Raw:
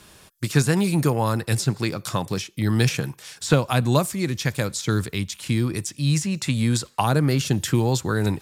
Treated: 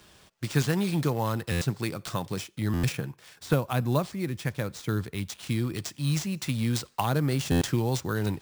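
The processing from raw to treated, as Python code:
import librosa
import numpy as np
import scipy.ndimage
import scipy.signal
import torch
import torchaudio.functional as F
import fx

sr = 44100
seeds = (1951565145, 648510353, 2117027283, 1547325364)

y = fx.high_shelf(x, sr, hz=4100.0, db=-10.5, at=(2.92, 5.18))
y = fx.sample_hold(y, sr, seeds[0], rate_hz=13000.0, jitter_pct=0)
y = fx.buffer_glitch(y, sr, at_s=(1.51, 2.73, 7.51), block=512, repeats=8)
y = y * librosa.db_to_amplitude(-6.0)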